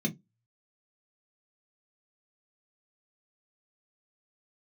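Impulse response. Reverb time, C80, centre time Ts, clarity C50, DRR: 0.15 s, 31.5 dB, 12 ms, 21.5 dB, 0.0 dB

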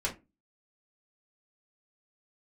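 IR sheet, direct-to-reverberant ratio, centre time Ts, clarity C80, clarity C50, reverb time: -3.5 dB, 15 ms, 22.5 dB, 13.0 dB, 0.25 s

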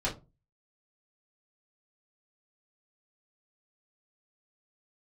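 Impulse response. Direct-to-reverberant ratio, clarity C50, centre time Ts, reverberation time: -6.0 dB, 12.5 dB, 20 ms, 0.30 s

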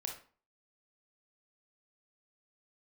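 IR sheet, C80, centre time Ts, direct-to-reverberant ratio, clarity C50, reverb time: 12.0 dB, 23 ms, 1.5 dB, 6.0 dB, 0.40 s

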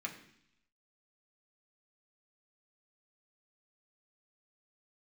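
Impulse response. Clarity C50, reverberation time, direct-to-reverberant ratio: 10.0 dB, 0.70 s, -0.5 dB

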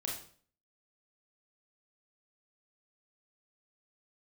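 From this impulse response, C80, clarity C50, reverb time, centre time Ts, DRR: 9.0 dB, 4.0 dB, 0.50 s, 37 ms, -2.5 dB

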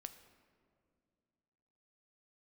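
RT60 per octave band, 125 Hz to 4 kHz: 2.8 s, 2.8 s, 2.5 s, 2.1 s, 1.7 s, 1.1 s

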